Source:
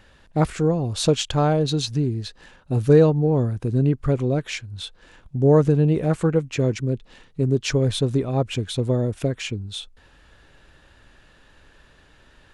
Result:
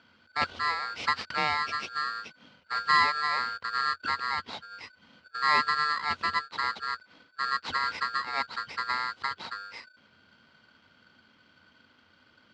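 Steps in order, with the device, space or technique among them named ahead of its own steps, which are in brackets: ring modulator pedal into a guitar cabinet (polarity switched at an audio rate 1500 Hz; speaker cabinet 80–4300 Hz, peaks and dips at 89 Hz +9 dB, 230 Hz +6 dB, 500 Hz +5 dB, 1700 Hz -6 dB); gain -7 dB

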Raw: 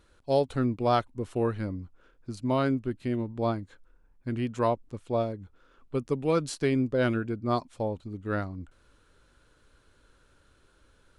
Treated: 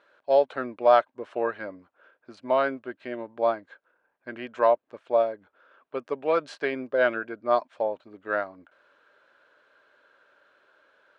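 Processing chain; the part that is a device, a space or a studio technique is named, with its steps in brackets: tin-can telephone (BPF 580–2600 Hz; small resonant body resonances 610/1600 Hz, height 8 dB, ringing for 30 ms); gain +5 dB

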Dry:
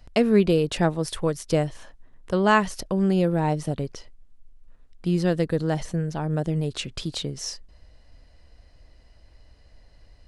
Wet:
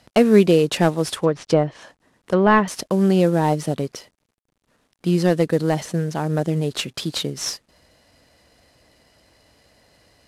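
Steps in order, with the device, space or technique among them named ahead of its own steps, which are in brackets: early wireless headset (HPF 160 Hz 12 dB/oct; CVSD 64 kbps); 1.15–2.68 treble ducked by the level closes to 2100 Hz, closed at -21 dBFS; gain +6 dB

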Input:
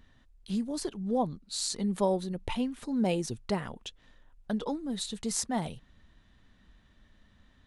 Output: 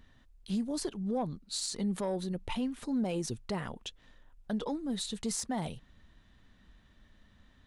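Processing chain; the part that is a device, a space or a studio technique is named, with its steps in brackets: soft clipper into limiter (soft clip -18 dBFS, distortion -22 dB; limiter -25.5 dBFS, peak gain reduction 6.5 dB)

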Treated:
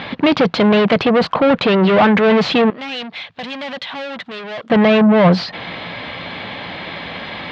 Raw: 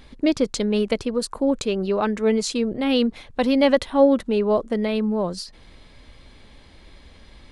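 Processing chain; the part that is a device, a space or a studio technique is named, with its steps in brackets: overdrive pedal into a guitar cabinet (overdrive pedal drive 34 dB, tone 5100 Hz, clips at -5 dBFS; speaker cabinet 88–3500 Hz, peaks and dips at 110 Hz +7 dB, 170 Hz +10 dB, 390 Hz -4 dB, 720 Hz +4 dB); 2.7–4.7 pre-emphasis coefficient 0.9

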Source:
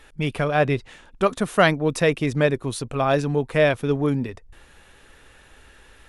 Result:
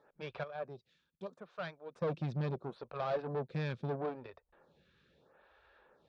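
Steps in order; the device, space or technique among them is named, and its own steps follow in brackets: 0.43–2.02 pre-emphasis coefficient 0.8; vibe pedal into a guitar amplifier (photocell phaser 0.76 Hz; tube stage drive 27 dB, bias 0.75; speaker cabinet 95–4000 Hz, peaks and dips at 97 Hz -8 dB, 160 Hz +5 dB, 280 Hz -7 dB, 560 Hz +5 dB, 2000 Hz -9 dB, 2900 Hz -9 dB); gain -5 dB

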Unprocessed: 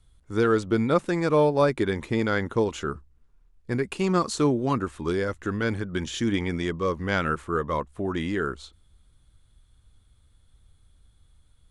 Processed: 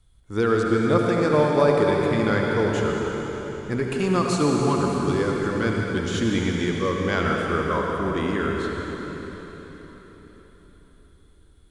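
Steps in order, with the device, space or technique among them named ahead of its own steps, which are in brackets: cathedral (reverb RT60 4.4 s, pre-delay 62 ms, DRR -1 dB)

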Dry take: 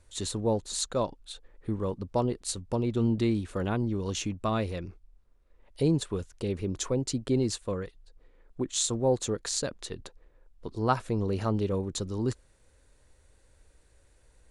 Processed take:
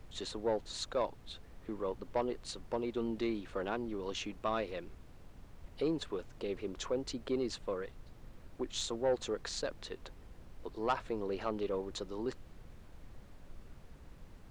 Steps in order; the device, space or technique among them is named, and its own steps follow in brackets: aircraft cabin announcement (BPF 370–3900 Hz; soft clip -21 dBFS, distortion -15 dB; brown noise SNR 11 dB); gain -2 dB

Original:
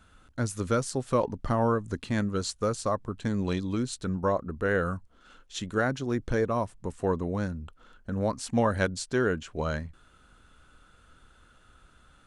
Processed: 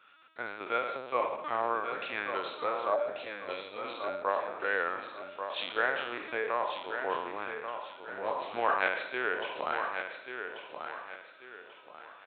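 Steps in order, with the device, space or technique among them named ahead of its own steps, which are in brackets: spectral trails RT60 0.91 s; 2.93–3.84 EQ curve 150 Hz 0 dB, 330 Hz -11 dB, 600 Hz +11 dB, 1100 Hz -19 dB, 4300 Hz +1 dB; talking toy (LPC vocoder at 8 kHz pitch kept; HPF 670 Hz 12 dB/oct; bell 2400 Hz +9.5 dB 0.28 oct); feedback echo 1.138 s, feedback 34%, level -7.5 dB; gain -1.5 dB

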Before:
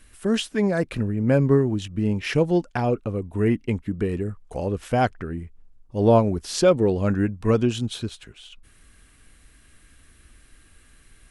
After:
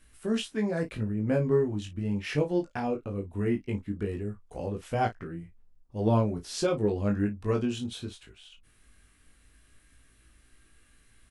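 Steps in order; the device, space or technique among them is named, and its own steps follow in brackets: double-tracked vocal (doubler 34 ms -11.5 dB; chorus 0.18 Hz, delay 18 ms, depth 2.6 ms); gain -4.5 dB

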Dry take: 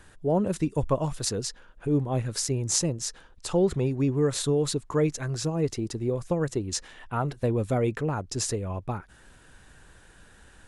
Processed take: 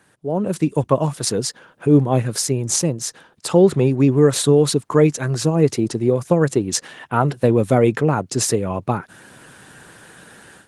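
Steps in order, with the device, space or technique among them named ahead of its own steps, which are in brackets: video call (HPF 120 Hz 24 dB/oct; AGC gain up to 14 dB; Opus 24 kbps 48000 Hz)

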